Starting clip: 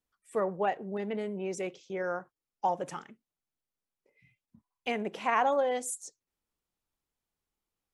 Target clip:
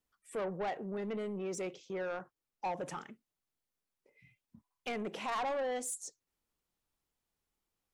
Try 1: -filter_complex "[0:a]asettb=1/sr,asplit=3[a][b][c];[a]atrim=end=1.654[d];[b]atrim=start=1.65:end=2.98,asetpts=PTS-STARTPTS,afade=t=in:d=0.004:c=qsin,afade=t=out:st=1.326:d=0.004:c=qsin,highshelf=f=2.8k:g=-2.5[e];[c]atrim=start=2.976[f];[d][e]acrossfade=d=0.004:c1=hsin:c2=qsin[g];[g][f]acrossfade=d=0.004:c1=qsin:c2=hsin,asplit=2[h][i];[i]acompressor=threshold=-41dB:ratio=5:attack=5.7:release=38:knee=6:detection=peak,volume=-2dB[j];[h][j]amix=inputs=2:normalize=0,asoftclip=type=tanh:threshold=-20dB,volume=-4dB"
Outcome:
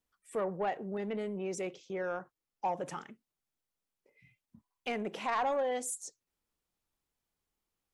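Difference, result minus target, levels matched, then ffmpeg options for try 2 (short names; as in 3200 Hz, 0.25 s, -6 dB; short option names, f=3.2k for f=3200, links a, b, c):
soft clip: distortion -8 dB
-filter_complex "[0:a]asettb=1/sr,asplit=3[a][b][c];[a]atrim=end=1.654[d];[b]atrim=start=1.65:end=2.98,asetpts=PTS-STARTPTS,afade=t=in:d=0.004:c=qsin,afade=t=out:st=1.326:d=0.004:c=qsin,highshelf=f=2.8k:g=-2.5[e];[c]atrim=start=2.976[f];[d][e]acrossfade=d=0.004:c1=hsin:c2=qsin[g];[g][f]acrossfade=d=0.004:c1=qsin:c2=hsin,asplit=2[h][i];[i]acompressor=threshold=-41dB:ratio=5:attack=5.7:release=38:knee=6:detection=peak,volume=-2dB[j];[h][j]amix=inputs=2:normalize=0,asoftclip=type=tanh:threshold=-27.5dB,volume=-4dB"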